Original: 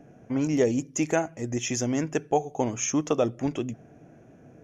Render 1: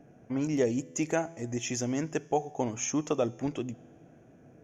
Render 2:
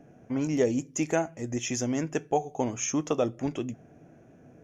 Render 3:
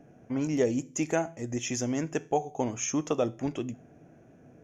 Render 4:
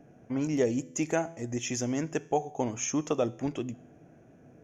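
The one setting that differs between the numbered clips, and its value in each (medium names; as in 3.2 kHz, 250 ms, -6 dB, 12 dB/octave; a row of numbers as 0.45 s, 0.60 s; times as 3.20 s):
feedback comb, decay: 2.1 s, 0.16 s, 0.4 s, 0.84 s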